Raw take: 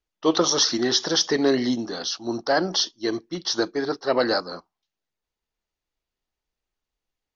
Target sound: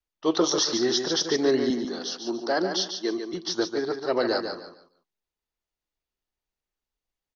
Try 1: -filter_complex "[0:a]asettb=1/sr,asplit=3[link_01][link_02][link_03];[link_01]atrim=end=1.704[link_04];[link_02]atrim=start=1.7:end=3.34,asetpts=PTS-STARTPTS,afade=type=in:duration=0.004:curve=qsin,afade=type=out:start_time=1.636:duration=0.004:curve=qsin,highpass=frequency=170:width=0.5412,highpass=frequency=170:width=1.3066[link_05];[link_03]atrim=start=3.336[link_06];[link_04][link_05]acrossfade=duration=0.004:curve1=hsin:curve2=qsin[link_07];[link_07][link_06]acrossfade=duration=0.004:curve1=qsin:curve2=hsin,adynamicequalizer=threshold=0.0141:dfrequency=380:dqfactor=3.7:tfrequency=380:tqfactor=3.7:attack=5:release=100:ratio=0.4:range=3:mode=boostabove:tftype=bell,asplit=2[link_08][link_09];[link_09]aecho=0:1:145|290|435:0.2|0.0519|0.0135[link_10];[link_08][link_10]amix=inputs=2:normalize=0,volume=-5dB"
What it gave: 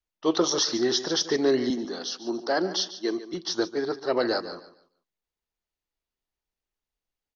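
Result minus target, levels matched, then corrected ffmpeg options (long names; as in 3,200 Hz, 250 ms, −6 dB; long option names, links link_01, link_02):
echo-to-direct −7 dB
-filter_complex "[0:a]asettb=1/sr,asplit=3[link_01][link_02][link_03];[link_01]atrim=end=1.704[link_04];[link_02]atrim=start=1.7:end=3.34,asetpts=PTS-STARTPTS,afade=type=in:duration=0.004:curve=qsin,afade=type=out:start_time=1.636:duration=0.004:curve=qsin,highpass=frequency=170:width=0.5412,highpass=frequency=170:width=1.3066[link_05];[link_03]atrim=start=3.336[link_06];[link_04][link_05]acrossfade=duration=0.004:curve1=hsin:curve2=qsin[link_07];[link_07][link_06]acrossfade=duration=0.004:curve1=qsin:curve2=hsin,adynamicequalizer=threshold=0.0141:dfrequency=380:dqfactor=3.7:tfrequency=380:tqfactor=3.7:attack=5:release=100:ratio=0.4:range=3:mode=boostabove:tftype=bell,asplit=2[link_08][link_09];[link_09]aecho=0:1:145|290|435:0.447|0.116|0.0302[link_10];[link_08][link_10]amix=inputs=2:normalize=0,volume=-5dB"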